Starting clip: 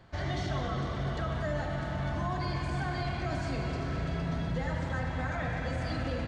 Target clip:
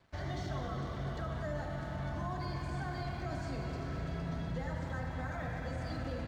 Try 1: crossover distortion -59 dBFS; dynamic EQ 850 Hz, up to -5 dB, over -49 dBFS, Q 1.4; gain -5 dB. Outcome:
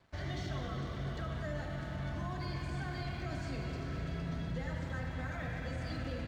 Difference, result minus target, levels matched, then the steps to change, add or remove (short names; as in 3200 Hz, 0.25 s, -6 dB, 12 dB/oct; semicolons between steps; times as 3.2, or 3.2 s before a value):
1000 Hz band -3.0 dB
change: dynamic EQ 2700 Hz, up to -5 dB, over -49 dBFS, Q 1.4